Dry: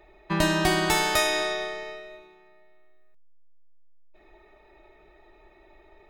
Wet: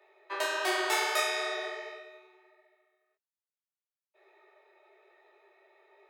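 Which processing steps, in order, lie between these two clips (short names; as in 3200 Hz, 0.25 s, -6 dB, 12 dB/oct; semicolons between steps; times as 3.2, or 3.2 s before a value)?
rippled Chebyshev high-pass 370 Hz, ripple 3 dB; detuned doubles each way 40 cents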